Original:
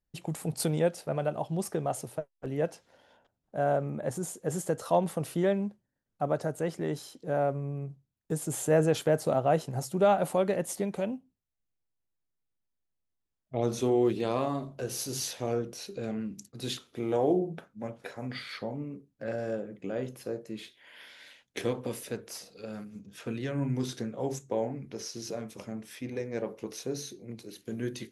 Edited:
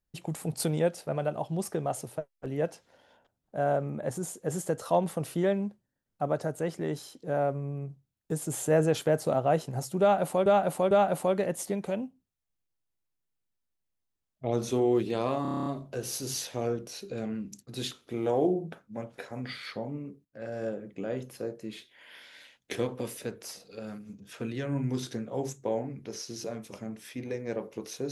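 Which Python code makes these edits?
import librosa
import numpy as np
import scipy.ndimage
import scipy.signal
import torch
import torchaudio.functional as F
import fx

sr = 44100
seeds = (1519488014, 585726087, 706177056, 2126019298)

y = fx.edit(x, sr, fx.repeat(start_s=10.01, length_s=0.45, count=3),
    fx.stutter(start_s=14.52, slice_s=0.03, count=9),
    fx.fade_in_from(start_s=19.11, length_s=0.41, floor_db=-15.0), tone=tone)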